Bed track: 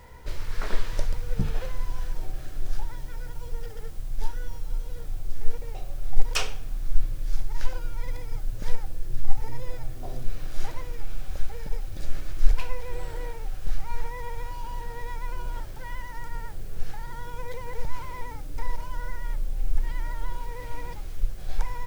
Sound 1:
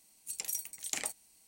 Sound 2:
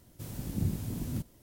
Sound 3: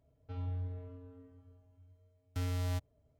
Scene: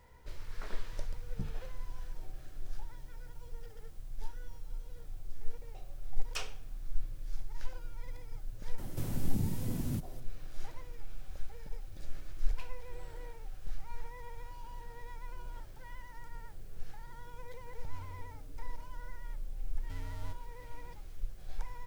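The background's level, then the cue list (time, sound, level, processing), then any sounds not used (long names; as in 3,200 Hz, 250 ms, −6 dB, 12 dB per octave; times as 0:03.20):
bed track −12 dB
0:08.78: mix in 2 −1 dB + multiband upward and downward compressor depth 70%
0:17.54: mix in 3 −11 dB
not used: 1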